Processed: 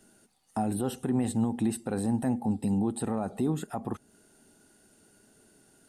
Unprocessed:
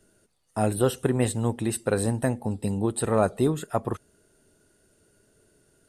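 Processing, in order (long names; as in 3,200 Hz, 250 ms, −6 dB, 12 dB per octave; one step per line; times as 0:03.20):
brickwall limiter −20 dBFS, peak gain reduction 11.5 dB
hollow resonant body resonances 230/780 Hz, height 12 dB, ringing for 25 ms
one half of a high-frequency compander encoder only
level −6 dB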